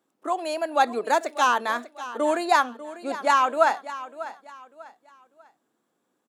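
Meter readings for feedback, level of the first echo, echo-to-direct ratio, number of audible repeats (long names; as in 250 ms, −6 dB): 32%, −15.0 dB, −14.5 dB, 3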